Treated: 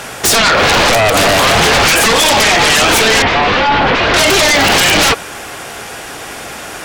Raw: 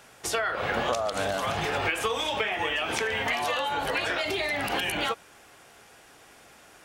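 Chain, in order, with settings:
sine wavefolder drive 16 dB, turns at −13 dBFS
0:03.22–0:04.14: Bessel low-pass filter 2,700 Hz, order 4
level +6.5 dB

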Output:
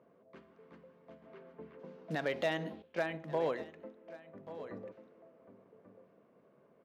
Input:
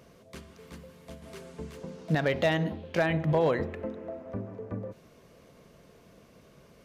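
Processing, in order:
0:01.26–0:01.78: low-pass filter 4,600 Hz → 2,100 Hz 12 dB per octave
low-pass that shuts in the quiet parts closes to 1,100 Hz, open at −27 dBFS
high-pass filter 230 Hz 12 dB per octave
on a send: single-tap delay 1,138 ms −14 dB
0:02.82–0:04.47: on the sum: expander for the loud parts 1.5 to 1, over −46 dBFS
level −7 dB

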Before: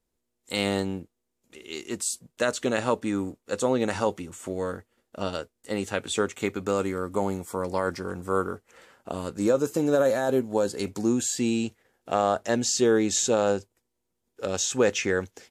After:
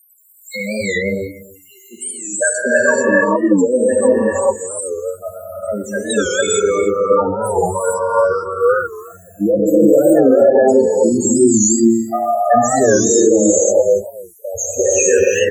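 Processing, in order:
spike at every zero crossing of −24 dBFS
noise gate −25 dBFS, range −27 dB
parametric band 300 Hz −8.5 dB 2.6 octaves
downward compressor 4 to 1, threshold −38 dBFS, peak gain reduction 14.5 dB
spectral peaks only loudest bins 4
0:01.83–0:03.84: loudspeaker in its box 120–8,400 Hz, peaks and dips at 840 Hz +5 dB, 1,700 Hz +9 dB, 2,500 Hz −10 dB
single-tap delay 287 ms −19 dB
reverb whose tail is shaped and stops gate 470 ms rising, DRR −7.5 dB
boost into a limiter +26 dB
wow of a warped record 45 rpm, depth 160 cents
level −1 dB

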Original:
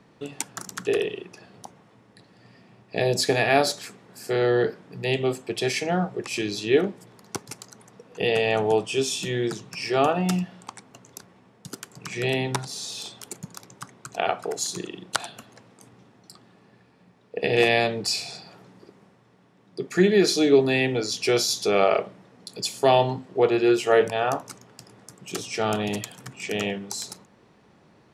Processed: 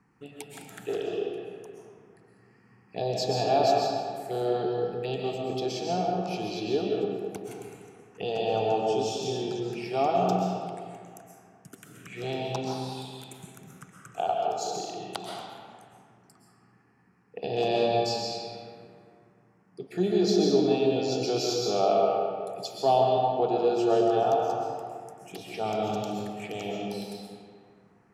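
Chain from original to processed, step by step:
parametric band 750 Hz +9 dB 0.4 octaves
phaser swept by the level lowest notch 600 Hz, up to 2,000 Hz, full sweep at −24.5 dBFS
comb and all-pass reverb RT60 2.1 s, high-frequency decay 0.6×, pre-delay 90 ms, DRR −1.5 dB
level −8 dB

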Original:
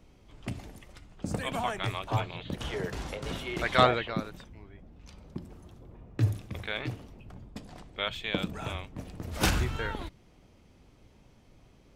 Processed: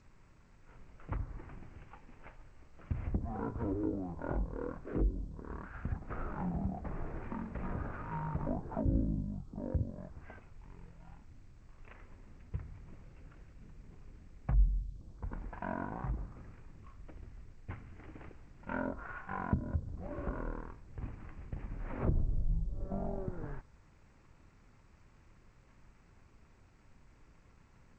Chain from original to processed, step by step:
variable-slope delta modulation 32 kbit/s
treble cut that deepens with the level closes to 390 Hz, closed at −24.5 dBFS
wrong playback speed 78 rpm record played at 33 rpm
level −2.5 dB
G.722 64 kbit/s 16,000 Hz

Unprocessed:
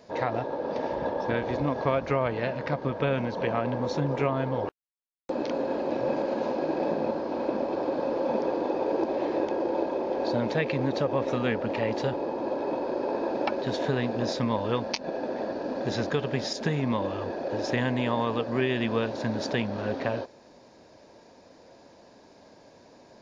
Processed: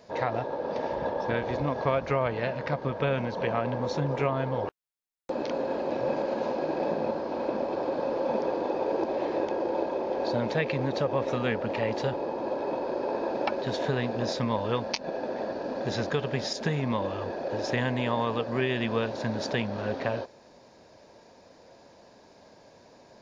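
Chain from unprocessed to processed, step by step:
parametric band 290 Hz −4 dB 0.66 octaves

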